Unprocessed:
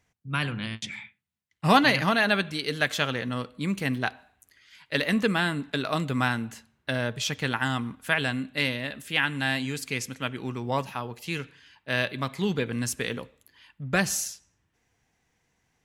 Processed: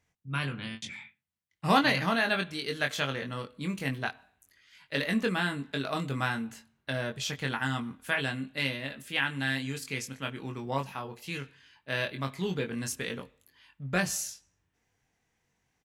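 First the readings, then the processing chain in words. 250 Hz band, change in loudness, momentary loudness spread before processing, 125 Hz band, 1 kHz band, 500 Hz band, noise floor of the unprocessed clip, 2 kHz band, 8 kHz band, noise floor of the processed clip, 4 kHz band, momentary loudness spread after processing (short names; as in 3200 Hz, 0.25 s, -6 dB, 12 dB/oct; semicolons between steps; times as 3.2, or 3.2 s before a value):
-4.5 dB, -4.5 dB, 12 LU, -4.0 dB, -4.0 dB, -4.0 dB, -74 dBFS, -4.0 dB, -4.5 dB, -78 dBFS, -4.0 dB, 12 LU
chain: doubler 22 ms -5 dB; gain -5.5 dB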